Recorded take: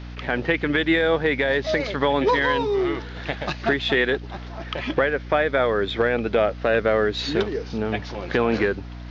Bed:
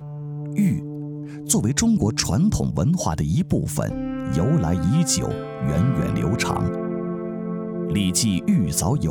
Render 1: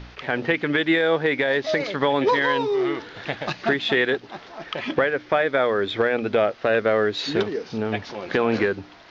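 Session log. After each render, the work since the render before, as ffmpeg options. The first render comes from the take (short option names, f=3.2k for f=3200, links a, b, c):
-af "bandreject=f=60:t=h:w=4,bandreject=f=120:t=h:w=4,bandreject=f=180:t=h:w=4,bandreject=f=240:t=h:w=4,bandreject=f=300:t=h:w=4"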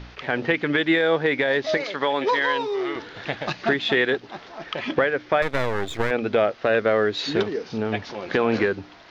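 -filter_complex "[0:a]asettb=1/sr,asplit=3[a][b][c];[a]atrim=end=1.774[d];[b]atrim=start=1.77:end=2.96,asetpts=PTS-STARTPTS,afade=t=in:d=0.004:c=qsin,afade=t=out:st=1.186:d=0.004:c=qsin,highpass=f=470:p=1[e];[c]atrim=start=2.956[f];[d][e]acrossfade=d=0.004:c1=hsin:c2=qsin[g];[g][f]acrossfade=d=0.004:c1=qsin:c2=hsin,asettb=1/sr,asplit=3[h][i][j];[h]atrim=end=5.424[k];[i]atrim=start=5.42:end=6.11,asetpts=PTS-STARTPTS,afade=t=in:d=0.004:c=qsin,afade=t=out:st=0.686:d=0.004:c=qsin,aeval=exprs='max(val(0),0)':c=same[l];[j]atrim=start=6.106[m];[k][l]acrossfade=d=0.004:c1=hsin:c2=qsin[n];[n][m]acrossfade=d=0.004:c1=qsin:c2=hsin"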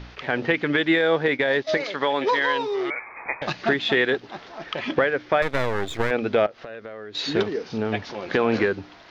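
-filter_complex "[0:a]asettb=1/sr,asplit=3[a][b][c];[a]atrim=end=1.284[d];[b]atrim=start=1.28:end=1.76,asetpts=PTS-STARTPTS,afade=t=in:d=0.004:c=qsin,afade=t=out:st=0.476:d=0.004:c=qsin,agate=range=-33dB:threshold=-25dB:ratio=3:release=100:detection=peak[e];[c]atrim=start=1.756[f];[d][e]acrossfade=d=0.004:c1=hsin:c2=qsin[g];[g][f]acrossfade=d=0.004:c1=qsin:c2=hsin,asettb=1/sr,asplit=3[h][i][j];[h]atrim=end=2.904[k];[i]atrim=start=2.9:end=3.42,asetpts=PTS-STARTPTS,afade=t=in:d=0.004:c=qsin,afade=t=out:st=0.516:d=0.004:c=qsin,lowpass=f=2.2k:t=q:w=0.5098,lowpass=f=2.2k:t=q:w=0.6013,lowpass=f=2.2k:t=q:w=0.9,lowpass=f=2.2k:t=q:w=2.563,afreqshift=-2600[l];[j]atrim=start=3.416[m];[k][l]acrossfade=d=0.004:c1=hsin:c2=qsin[n];[n][m]acrossfade=d=0.004:c1=qsin:c2=hsin,asettb=1/sr,asplit=3[o][p][q];[o]atrim=end=6.464[r];[p]atrim=start=6.46:end=7.15,asetpts=PTS-STARTPTS,afade=t=in:d=0.004:c=qsin,afade=t=out:st=0.686:d=0.004:c=qsin,acompressor=threshold=-37dB:ratio=4:attack=3.2:release=140:knee=1:detection=peak[s];[q]atrim=start=7.146[t];[r][s]acrossfade=d=0.004:c1=hsin:c2=qsin[u];[u][t]acrossfade=d=0.004:c1=qsin:c2=hsin"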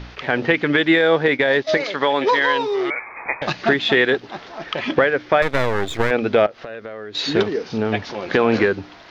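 -af "volume=4.5dB"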